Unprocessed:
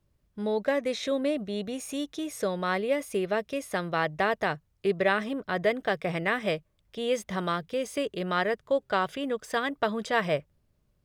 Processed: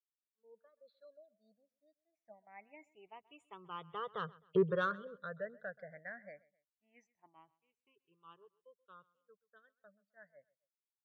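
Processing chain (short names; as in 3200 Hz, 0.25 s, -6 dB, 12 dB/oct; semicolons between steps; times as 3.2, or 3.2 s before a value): moving spectral ripple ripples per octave 0.67, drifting +0.25 Hz, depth 20 dB; Doppler pass-by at 4.53, 21 m/s, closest 1.3 m; expander -53 dBFS; LPF 1900 Hz 6 dB/oct; spectral gate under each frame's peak -30 dB strong; HPF 130 Hz 12 dB/oct; bell 300 Hz -10 dB 1.4 oct; in parallel at -4 dB: soft clip -33 dBFS, distortion -8 dB; on the sum: feedback echo 0.13 s, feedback 34%, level -22 dB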